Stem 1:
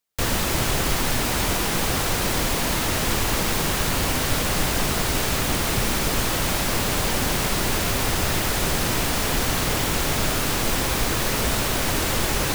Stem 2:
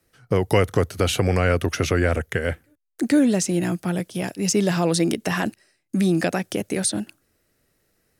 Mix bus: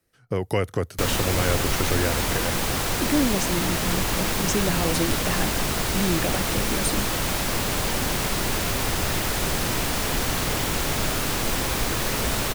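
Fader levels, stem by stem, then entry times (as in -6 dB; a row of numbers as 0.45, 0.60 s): -2.0, -5.5 dB; 0.80, 0.00 s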